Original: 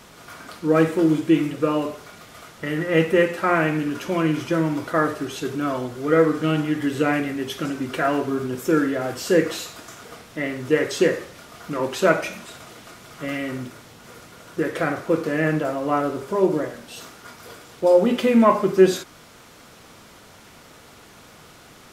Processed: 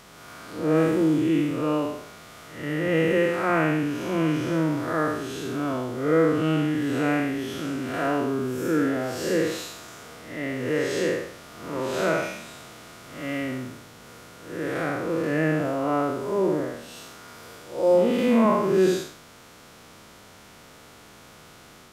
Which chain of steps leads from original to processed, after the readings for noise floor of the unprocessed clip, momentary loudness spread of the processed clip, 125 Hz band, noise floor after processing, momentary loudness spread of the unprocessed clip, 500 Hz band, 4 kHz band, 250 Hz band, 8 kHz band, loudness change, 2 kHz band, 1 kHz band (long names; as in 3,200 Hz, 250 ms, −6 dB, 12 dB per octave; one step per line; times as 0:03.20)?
−48 dBFS, 20 LU, −1.5 dB, −49 dBFS, 20 LU, −3.0 dB, −3.0 dB, −2.0 dB, −3.0 dB, −3.0 dB, −3.0 dB, −3.5 dB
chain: spectrum smeared in time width 182 ms